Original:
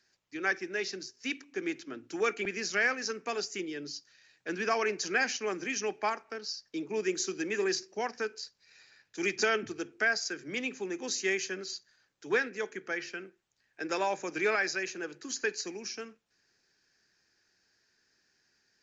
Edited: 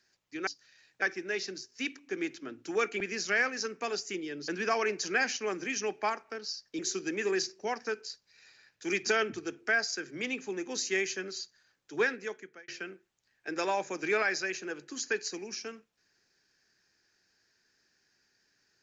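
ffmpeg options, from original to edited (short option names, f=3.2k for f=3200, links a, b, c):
-filter_complex "[0:a]asplit=6[a][b][c][d][e][f];[a]atrim=end=0.472[g];[b]atrim=start=3.928:end=4.482[h];[c]atrim=start=0.468:end=3.932[i];[d]atrim=start=4.478:end=6.792[j];[e]atrim=start=7.118:end=13.01,asetpts=PTS-STARTPTS,afade=t=out:st=5.352:d=0.54[k];[f]atrim=start=13.01,asetpts=PTS-STARTPTS,afade=t=in:d=0.004:c=hsin[l];[g][h]acrossfade=d=0.004:c1=hsin:c2=hsin[m];[m][i]acrossfade=d=0.004:c1=hsin:c2=hsin[n];[n][j]acrossfade=d=0.004:c1=hsin:c2=hsin[o];[k][l]concat=n=2:v=0:a=1[p];[o][p]acrossfade=d=0.004:c1=hsin:c2=hsin"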